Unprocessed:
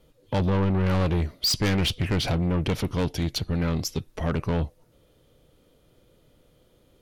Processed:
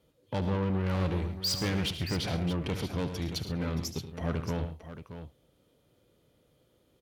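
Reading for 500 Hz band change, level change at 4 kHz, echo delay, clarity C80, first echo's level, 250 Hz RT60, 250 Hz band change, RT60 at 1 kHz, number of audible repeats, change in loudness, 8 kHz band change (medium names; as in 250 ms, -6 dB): -6.0 dB, -6.0 dB, 74 ms, no reverb, -12.5 dB, no reverb, -6.0 dB, no reverb, 3, -6.5 dB, -6.0 dB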